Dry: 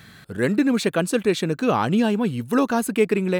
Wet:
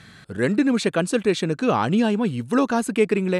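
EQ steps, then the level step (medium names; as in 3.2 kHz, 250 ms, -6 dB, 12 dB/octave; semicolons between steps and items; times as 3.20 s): low-pass 10 kHz 24 dB/octave; 0.0 dB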